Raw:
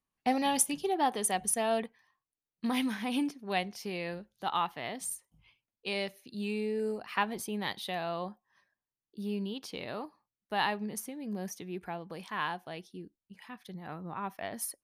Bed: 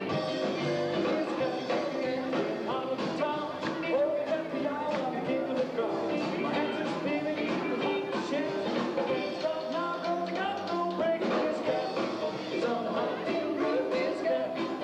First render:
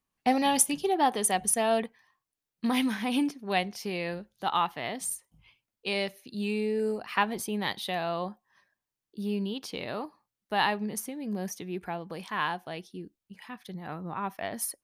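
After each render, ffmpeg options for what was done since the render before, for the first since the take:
-af "volume=1.58"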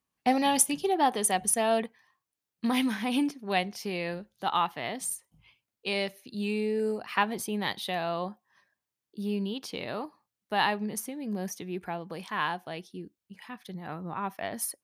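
-af "highpass=55"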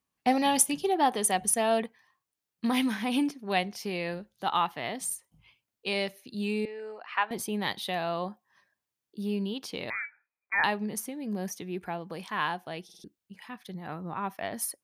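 -filter_complex "[0:a]asettb=1/sr,asplit=3[s0][s1][s2];[s0]atrim=end=6.654[s3];[s1]atrim=start=6.65:end=7.31,asetpts=PTS-STARTPTS,afade=t=in:d=0.004:c=qsin,afade=t=out:st=0.656:d=0.004:c=qsin,highpass=770,lowpass=2700[s4];[s2]atrim=start=7.306[s5];[s3][s4]acrossfade=d=0.004:c1=hsin:c2=qsin[s6];[s6][s5]acrossfade=d=0.004:c1=qsin:c2=hsin,asettb=1/sr,asplit=3[s7][s8][s9];[s7]atrim=end=9.904[s10];[s8]atrim=start=9.9:end=10.64,asetpts=PTS-STARTPTS,afade=t=in:d=0.004:c=qsin,afade=t=out:st=0.736:d=0.004:c=qsin,lowpass=f=2200:t=q:w=0.5098,lowpass=f=2200:t=q:w=0.6013,lowpass=f=2200:t=q:w=0.9,lowpass=f=2200:t=q:w=2.563,afreqshift=-2600[s11];[s9]atrim=start=10.636[s12];[s10][s11]acrossfade=d=0.004:c1=hsin:c2=qsin[s13];[s13][s12]acrossfade=d=0.004:c1=qsin:c2=hsin,asplit=5[s14][s15][s16][s17][s18];[s14]atrim=end=12.892[s19];[s15]atrim=start=12.838:end=12.892[s20];[s16]atrim=start=12.838:end=12.892[s21];[s17]atrim=start=12.838:end=12.892[s22];[s18]atrim=start=13.038[s23];[s19][s20]acrossfade=d=0.004:c1=hsin:c2=hsin[s24];[s24][s21]acrossfade=d=0.004:c1=hsin:c2=hsin[s25];[s25][s22]acrossfade=d=0.004:c1=hsin:c2=hsin[s26];[s26][s23]acrossfade=d=0.004:c1=hsin:c2=hsin"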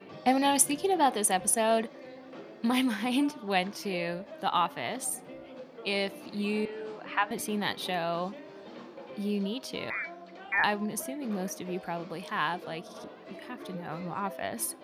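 -filter_complex "[1:a]volume=0.168[s0];[0:a][s0]amix=inputs=2:normalize=0"

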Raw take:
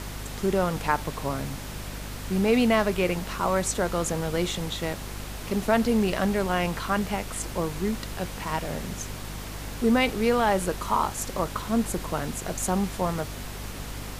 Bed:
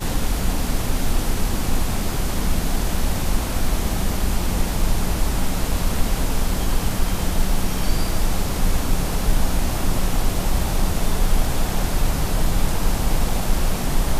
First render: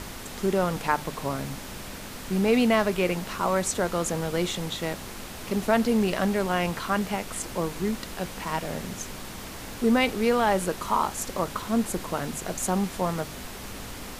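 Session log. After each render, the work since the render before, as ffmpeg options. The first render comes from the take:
-af "bandreject=f=50:t=h:w=6,bandreject=f=100:t=h:w=6,bandreject=f=150:t=h:w=6"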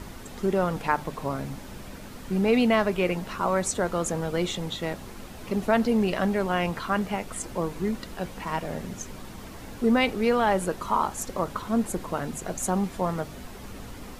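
-af "afftdn=nr=8:nf=-39"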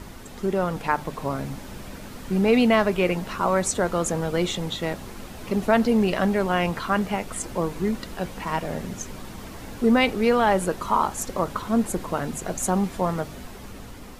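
-af "dynaudnorm=f=280:g=7:m=1.41"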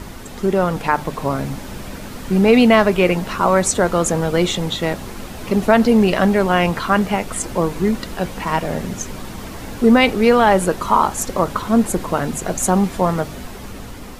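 -af "volume=2.24,alimiter=limit=0.794:level=0:latency=1"

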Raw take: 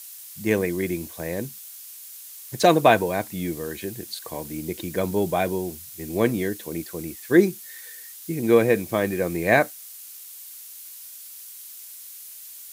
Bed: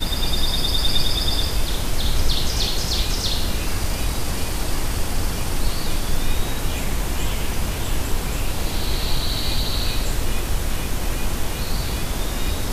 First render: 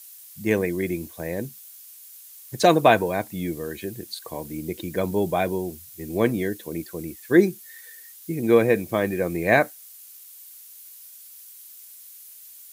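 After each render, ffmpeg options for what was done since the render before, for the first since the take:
-af "afftdn=nr=6:nf=-42"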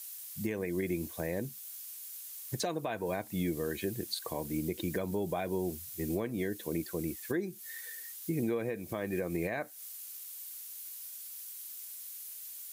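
-af "acompressor=threshold=0.0631:ratio=10,alimiter=limit=0.0708:level=0:latency=1:release=339"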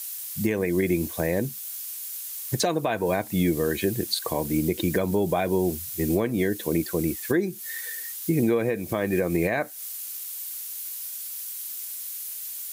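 -af "volume=3.16"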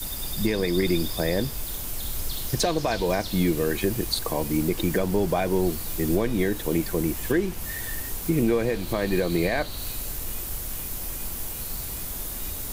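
-filter_complex "[1:a]volume=0.224[s0];[0:a][s0]amix=inputs=2:normalize=0"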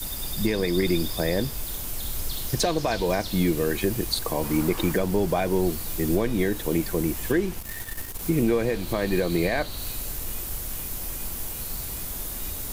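-filter_complex "[0:a]asettb=1/sr,asplit=3[s0][s1][s2];[s0]atrim=end=4.434[s3];[s1]atrim=start=4.43:end=4.93,asetpts=PTS-STARTPTS,afade=t=in:d=0.004:c=qsin,afade=t=out:st=0.496:d=0.004:c=qsin,equalizer=f=1100:w=0.99:g=9.5[s4];[s2]atrim=start=4.926[s5];[s3][s4]acrossfade=d=0.004:c1=hsin:c2=qsin[s6];[s6][s5]acrossfade=d=0.004:c1=qsin:c2=hsin,asettb=1/sr,asplit=3[s7][s8][s9];[s7]atrim=end=7.594[s10];[s8]atrim=start=7.59:end=8.2,asetpts=PTS-STARTPTS,afade=t=in:d=0.004:c=qsin,afade=t=out:st=0.606:d=0.004:c=qsin,aeval=exprs='if(lt(val(0),0),0.251*val(0),val(0))':c=same[s11];[s9]atrim=start=8.196[s12];[s10][s11]acrossfade=d=0.004:c1=hsin:c2=qsin[s13];[s13][s12]acrossfade=d=0.004:c1=qsin:c2=hsin"

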